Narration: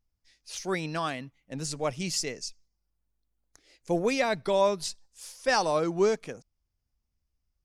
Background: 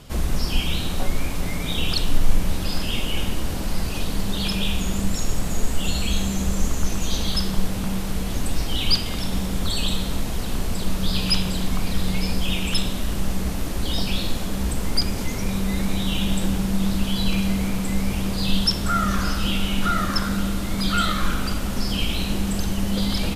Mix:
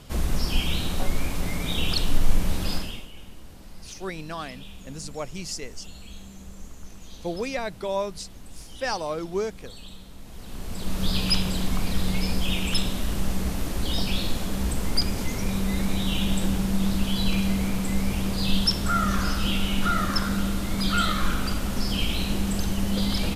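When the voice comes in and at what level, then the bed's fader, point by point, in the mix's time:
3.35 s, −3.5 dB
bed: 0:02.74 −2 dB
0:03.11 −19.5 dB
0:10.15 −19.5 dB
0:11.03 −2 dB

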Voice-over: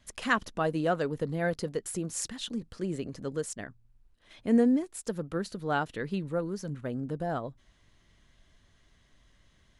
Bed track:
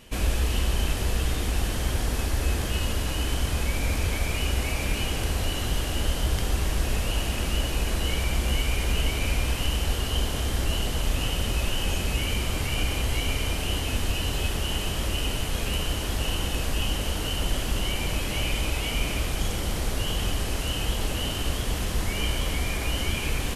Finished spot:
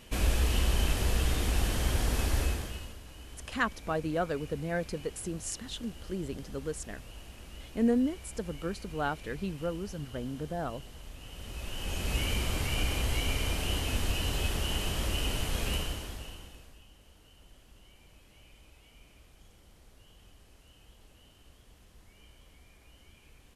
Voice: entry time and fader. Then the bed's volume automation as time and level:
3.30 s, −3.0 dB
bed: 0:02.40 −2.5 dB
0:03.00 −21 dB
0:11.20 −21 dB
0:12.16 −4 dB
0:15.74 −4 dB
0:16.85 −30.5 dB

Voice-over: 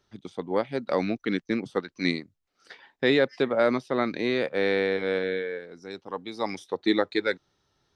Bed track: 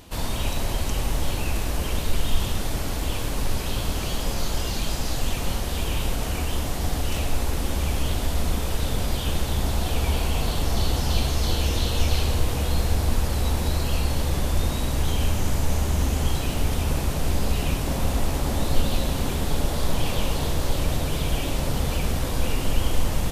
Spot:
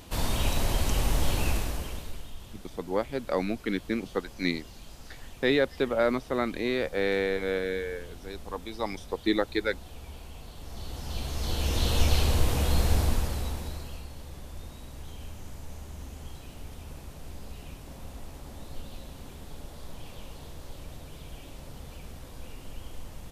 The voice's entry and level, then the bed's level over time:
2.40 s, −2.5 dB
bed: 0:01.49 −1 dB
0:02.34 −20.5 dB
0:10.53 −20.5 dB
0:11.91 −1.5 dB
0:12.99 −1.5 dB
0:14.09 −19 dB

